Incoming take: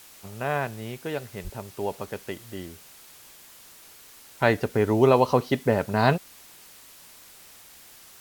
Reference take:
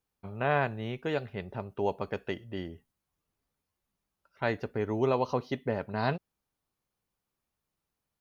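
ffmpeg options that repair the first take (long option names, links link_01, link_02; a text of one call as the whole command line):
ffmpeg -i in.wav -filter_complex "[0:a]adeclick=threshold=4,asplit=3[link_01][link_02][link_03];[link_01]afade=type=out:start_time=1.43:duration=0.02[link_04];[link_02]highpass=frequency=140:width=0.5412,highpass=frequency=140:width=1.3066,afade=type=in:start_time=1.43:duration=0.02,afade=type=out:start_time=1.55:duration=0.02[link_05];[link_03]afade=type=in:start_time=1.55:duration=0.02[link_06];[link_04][link_05][link_06]amix=inputs=3:normalize=0,afwtdn=0.0035,asetnsamples=nb_out_samples=441:pad=0,asendcmd='4.4 volume volume -9dB',volume=0dB" out.wav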